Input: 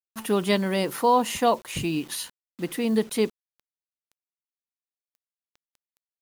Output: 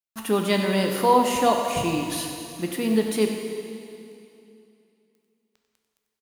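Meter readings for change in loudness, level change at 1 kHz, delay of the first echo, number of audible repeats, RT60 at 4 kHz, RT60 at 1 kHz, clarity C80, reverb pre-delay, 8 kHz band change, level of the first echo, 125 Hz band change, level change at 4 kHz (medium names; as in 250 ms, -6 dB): +1.5 dB, +2.5 dB, 94 ms, 1, 2.5 s, 2.7 s, 4.0 dB, 6 ms, +2.0 dB, -11.0 dB, +2.0 dB, +2.0 dB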